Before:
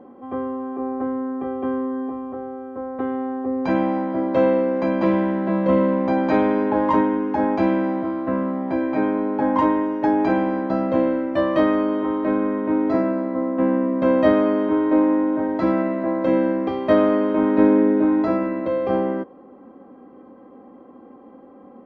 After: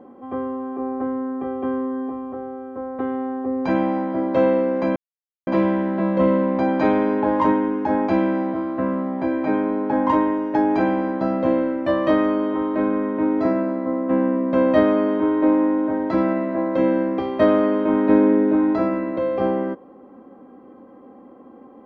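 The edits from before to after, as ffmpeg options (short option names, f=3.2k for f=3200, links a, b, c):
-filter_complex "[0:a]asplit=2[a][b];[a]atrim=end=4.96,asetpts=PTS-STARTPTS,afade=t=out:st=4.956:d=0.004:c=hsin,apad=pad_dur=0.51[c];[b]atrim=start=4.96,asetpts=PTS-STARTPTS,afade=t=in:d=0.004:c=hsin[d];[c][d]concat=n=2:v=0:a=1"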